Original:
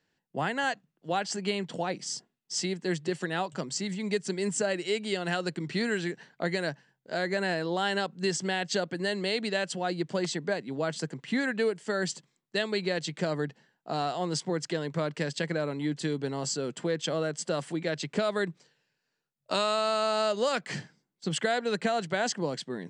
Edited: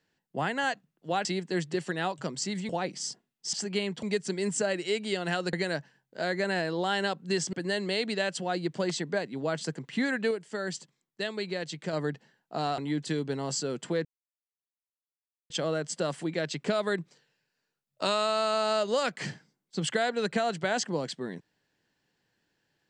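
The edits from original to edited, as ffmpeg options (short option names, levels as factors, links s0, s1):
-filter_complex "[0:a]asplit=11[s0][s1][s2][s3][s4][s5][s6][s7][s8][s9][s10];[s0]atrim=end=1.252[s11];[s1]atrim=start=2.588:end=4.032[s12];[s2]atrim=start=1.748:end=2.592[s13];[s3]atrim=start=1.248:end=1.752[s14];[s4]atrim=start=4.028:end=5.532[s15];[s5]atrim=start=6.458:end=8.462[s16];[s6]atrim=start=8.878:end=11.662[s17];[s7]atrim=start=11.658:end=13.282,asetpts=PTS-STARTPTS,volume=0.631[s18];[s8]atrim=start=13.278:end=14.132[s19];[s9]atrim=start=15.718:end=16.99,asetpts=PTS-STARTPTS,afade=t=out:st=1.268:d=0.004:c=hsin,apad=pad_dur=1.45[s20];[s10]atrim=start=16.99,asetpts=PTS-STARTPTS,afade=t=in:d=0.004:c=hsin[s21];[s11][s12]acrossfade=d=0.004:c1=hsin:c2=hsin[s22];[s22][s13]acrossfade=d=0.004:c1=hsin:c2=hsin[s23];[s23][s14]acrossfade=d=0.004:c1=hsin:c2=hsin[s24];[s24][s15]acrossfade=d=0.004:c1=hsin:c2=hsin[s25];[s25][s16]acrossfade=d=0.004:c1=hsin:c2=hsin[s26];[s26][s17]acrossfade=d=0.004:c1=hsin:c2=hsin[s27];[s27][s18]acrossfade=d=0.004:c1=hsin:c2=hsin[s28];[s28][s19]acrossfade=d=0.004:c1=hsin:c2=hsin[s29];[s20][s21]concat=n=2:v=0:a=1[s30];[s29][s30]acrossfade=d=0.004:c1=hsin:c2=hsin"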